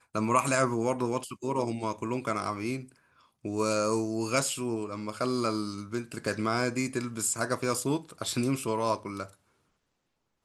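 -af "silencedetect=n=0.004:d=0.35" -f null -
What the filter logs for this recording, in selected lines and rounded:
silence_start: 2.92
silence_end: 3.44 | silence_duration: 0.53
silence_start: 9.34
silence_end: 10.44 | silence_duration: 1.10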